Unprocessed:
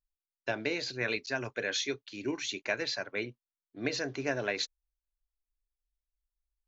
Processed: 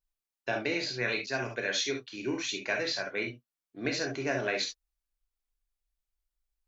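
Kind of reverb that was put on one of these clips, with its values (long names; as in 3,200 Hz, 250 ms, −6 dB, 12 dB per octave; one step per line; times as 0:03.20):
reverb whose tail is shaped and stops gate 90 ms flat, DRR 2 dB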